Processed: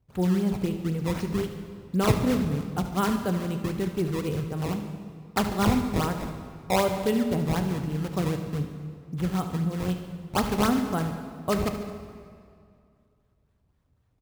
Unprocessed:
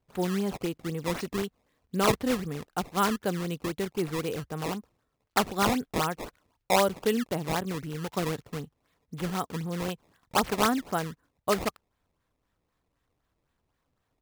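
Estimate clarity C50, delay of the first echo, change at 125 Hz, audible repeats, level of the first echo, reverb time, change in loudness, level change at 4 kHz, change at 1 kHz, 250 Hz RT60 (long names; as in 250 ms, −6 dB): 6.5 dB, 73 ms, +7.5 dB, 2, −13.0 dB, 2.3 s, +2.5 dB, −2.0 dB, −1.0 dB, 2.5 s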